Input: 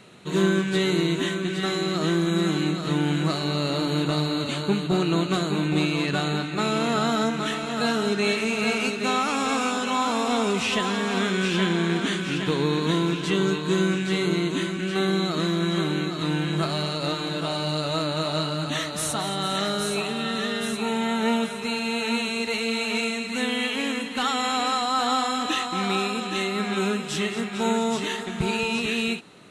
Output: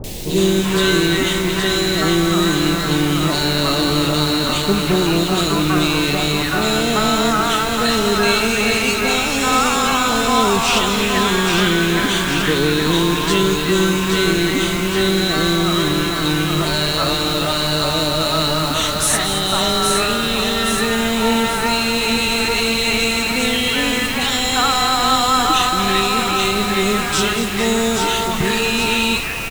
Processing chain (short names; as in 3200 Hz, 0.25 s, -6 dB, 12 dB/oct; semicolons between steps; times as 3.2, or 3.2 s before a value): low shelf 370 Hz -8.5 dB; in parallel at -1 dB: limiter -24.5 dBFS, peak gain reduction 11 dB; on the sum: added noise pink -36 dBFS; three bands offset in time lows, highs, mids 40/380 ms, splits 700/2300 Hz; gain +8.5 dB